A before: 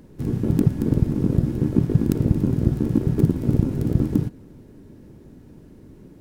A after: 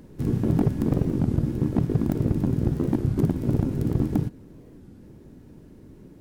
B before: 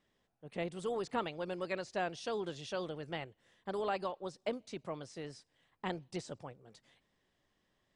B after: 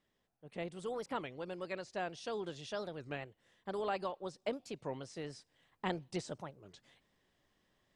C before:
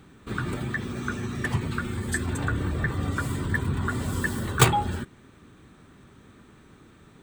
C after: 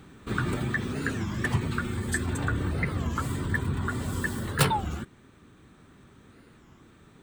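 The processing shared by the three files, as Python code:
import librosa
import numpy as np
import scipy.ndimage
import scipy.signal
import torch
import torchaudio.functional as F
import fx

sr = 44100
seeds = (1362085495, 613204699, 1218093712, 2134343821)

y = fx.rider(x, sr, range_db=4, speed_s=2.0)
y = np.clip(y, -10.0 ** (-12.0 / 20.0), 10.0 ** (-12.0 / 20.0))
y = fx.record_warp(y, sr, rpm=33.33, depth_cents=250.0)
y = F.gain(torch.from_numpy(y), -2.0).numpy()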